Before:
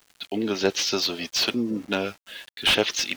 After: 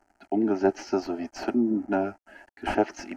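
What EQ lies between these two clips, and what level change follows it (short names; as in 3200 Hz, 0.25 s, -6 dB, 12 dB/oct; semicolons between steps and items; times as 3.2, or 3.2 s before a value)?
air absorption 64 m; resonant high shelf 1500 Hz -12.5 dB, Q 1.5; fixed phaser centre 730 Hz, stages 8; +4.0 dB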